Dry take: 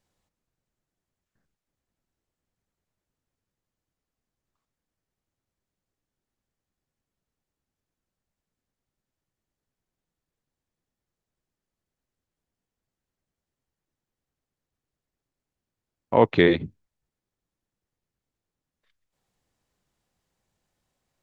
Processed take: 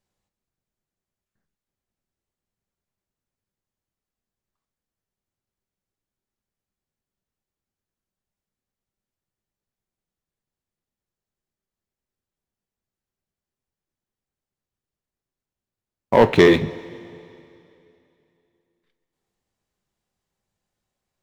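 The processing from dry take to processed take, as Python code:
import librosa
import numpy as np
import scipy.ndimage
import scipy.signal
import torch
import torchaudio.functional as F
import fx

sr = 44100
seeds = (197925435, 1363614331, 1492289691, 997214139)

y = fx.leveller(x, sr, passes=2)
y = fx.rev_double_slope(y, sr, seeds[0], early_s=0.27, late_s=2.8, knee_db=-18, drr_db=9.0)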